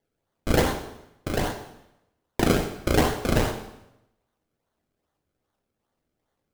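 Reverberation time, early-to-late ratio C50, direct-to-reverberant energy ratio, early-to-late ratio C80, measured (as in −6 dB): 0.85 s, 8.0 dB, 4.5 dB, 11.0 dB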